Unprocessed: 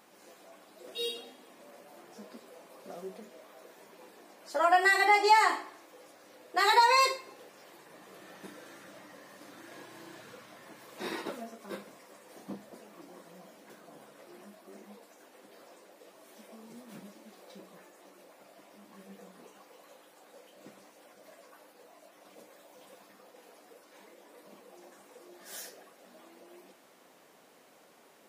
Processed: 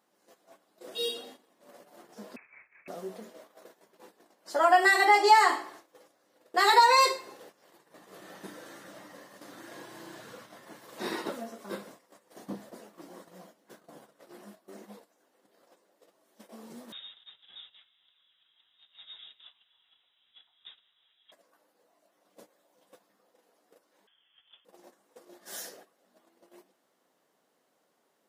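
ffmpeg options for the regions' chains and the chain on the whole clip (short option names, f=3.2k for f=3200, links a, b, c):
-filter_complex "[0:a]asettb=1/sr,asplit=3[a][b][c];[a]atrim=end=2.364[d];[b]atrim=start=2.36:end=2.88,asetpts=PTS-STARTPTS,afade=t=in:d=0.004:c=qsin,afade=t=out:st=0.516:d=0.004:c=qsin,lowpass=f=2.4k:t=q:w=0.5098,lowpass=f=2.4k:t=q:w=0.6013,lowpass=f=2.4k:t=q:w=0.9,lowpass=f=2.4k:t=q:w=2.563,afreqshift=-2800,equalizer=f=380:t=o:w=1.9:g=-2.5[e];[c]atrim=start=2.876[f];[d][e]acrossfade=d=0.004:c1=hsin:c2=qsin[g];[g][f]acrossfade=d=0.004:c1=qsin:c2=hsin,asettb=1/sr,asplit=3[h][i][j];[h]atrim=end=16.924[k];[i]atrim=start=16.92:end=21.32,asetpts=PTS-STARTPTS,afade=t=in:d=0.004:c=qsin,afade=t=out:st=4.396:d=0.004:c=qsin,aeval=exprs='val(0)+0.000447*(sin(2*PI*50*n/s)+sin(2*PI*2*50*n/s)/2+sin(2*PI*3*50*n/s)/3+sin(2*PI*4*50*n/s)/4+sin(2*PI*5*50*n/s)/5)':c=same,aecho=1:1:361:0.15,atrim=end_sample=194040,lowpass=f=3.3k:t=q:w=0.5098,lowpass=f=3.3k:t=q:w=0.6013,lowpass=f=3.3k:t=q:w=0.9,lowpass=f=3.3k:t=q:w=2.563,afreqshift=-3900[l];[j]atrim=start=21.316[m];[k][l]acrossfade=d=0.004:c1=hsin:c2=qsin[n];[n][m]acrossfade=d=0.004:c1=qsin:c2=hsin,asettb=1/sr,asplit=3[o][p][q];[o]atrim=end=24.074[r];[p]atrim=start=24.07:end=24.65,asetpts=PTS-STARTPTS,afade=t=in:d=0.004:c=qsin,afade=t=out:st=0.576:d=0.004:c=qsin,aemphasis=mode=production:type=cd,lowpass=f=3.1k:t=q:w=0.5098,lowpass=f=3.1k:t=q:w=0.6013,lowpass=f=3.1k:t=q:w=0.9,lowpass=f=3.1k:t=q:w=2.563,afreqshift=-3700[s];[q]atrim=start=24.646[t];[r][s]acrossfade=d=0.004:c1=hsin:c2=qsin[u];[u][t]acrossfade=d=0.004:c1=qsin:c2=hsin,agate=range=-16dB:threshold=-52dB:ratio=16:detection=peak,highpass=64,equalizer=f=2.4k:w=4.8:g=-5.5,volume=3dB"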